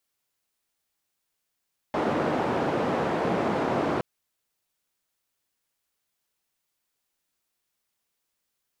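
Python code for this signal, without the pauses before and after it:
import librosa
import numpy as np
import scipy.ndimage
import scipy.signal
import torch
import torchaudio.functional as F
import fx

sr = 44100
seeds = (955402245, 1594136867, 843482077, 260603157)

y = fx.band_noise(sr, seeds[0], length_s=2.07, low_hz=160.0, high_hz=690.0, level_db=-26.0)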